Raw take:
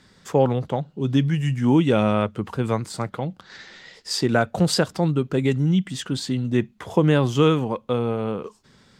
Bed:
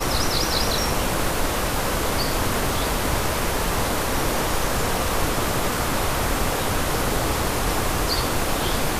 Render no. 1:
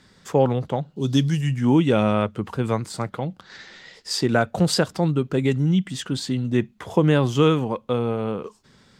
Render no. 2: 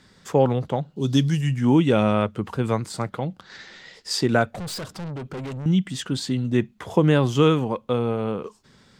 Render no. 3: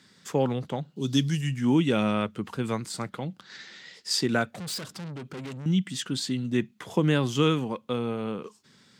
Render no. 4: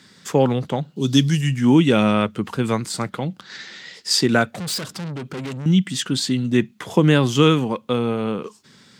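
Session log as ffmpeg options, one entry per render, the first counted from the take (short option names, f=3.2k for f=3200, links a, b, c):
-filter_complex "[0:a]asettb=1/sr,asplit=3[a][b][c];[a]atrim=end=0.964[d];[b]atrim=start=0.96:end=1.41,asetpts=PTS-STARTPTS,afade=t=in:d=0.004:c=qsin,afade=t=out:st=0.446:d=0.004:c=qsin,highshelf=f=3.3k:t=q:w=1.5:g=9.5[e];[c]atrim=start=1.406[f];[d][e]acrossfade=d=0.004:c1=hsin:c2=qsin[g];[g][f]acrossfade=d=0.004:c1=qsin:c2=hsin"
-filter_complex "[0:a]asettb=1/sr,asplit=3[a][b][c];[a]atrim=end=4.544[d];[b]atrim=start=4.54:end=5.66,asetpts=PTS-STARTPTS,afade=t=in:d=0.004:c=qsin,afade=t=out:st=1.116:d=0.004:c=qsin,aeval=exprs='(tanh(31.6*val(0)+0.15)-tanh(0.15))/31.6':c=same[e];[c]atrim=start=5.656[f];[d][e]acrossfade=d=0.004:c1=hsin:c2=qsin[g];[g][f]acrossfade=d=0.004:c1=qsin:c2=hsin"
-af "highpass=170,equalizer=f=650:w=0.59:g=-8"
-af "volume=8dB"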